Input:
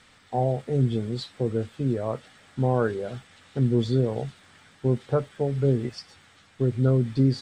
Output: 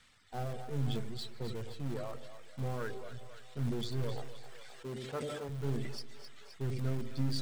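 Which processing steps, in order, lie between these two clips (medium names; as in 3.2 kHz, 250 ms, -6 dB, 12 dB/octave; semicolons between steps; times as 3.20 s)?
partial rectifier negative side -7 dB; 4.17–5.49 s: high-pass 230 Hz 12 dB/octave; reverb removal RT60 1.1 s; peaking EQ 440 Hz -7 dB 2.9 oct; in parallel at -12 dB: integer overflow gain 32 dB; on the sum: two-band feedback delay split 510 Hz, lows 94 ms, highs 261 ms, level -12 dB; on a send at -20.5 dB: reverberation RT60 0.95 s, pre-delay 115 ms; on the sum: decay stretcher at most 25 dB/s; trim -6 dB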